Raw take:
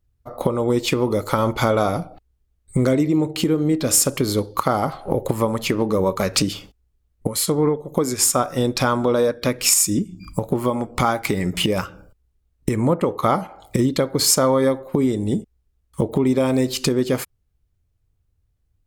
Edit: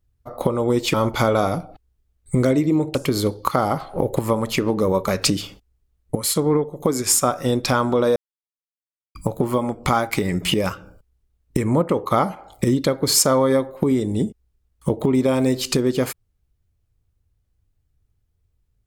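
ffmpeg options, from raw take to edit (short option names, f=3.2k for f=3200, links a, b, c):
-filter_complex "[0:a]asplit=5[a][b][c][d][e];[a]atrim=end=0.942[f];[b]atrim=start=1.358:end=3.372[g];[c]atrim=start=4.068:end=9.28,asetpts=PTS-STARTPTS,afade=t=out:st=5.208:d=0.004:c=hsin[h];[d]atrim=start=9.28:end=10.27,asetpts=PTS-STARTPTS,volume=0[i];[e]atrim=start=10.27,asetpts=PTS-STARTPTS,afade=t=in:d=0.004:c=hsin[j];[f][g]acrossfade=d=0.004:c1=hsin:c2=hsin[k];[h][i][j]concat=n=3:v=0:a=1[l];[k][l]acrossfade=d=0.004:c1=hsin:c2=hsin"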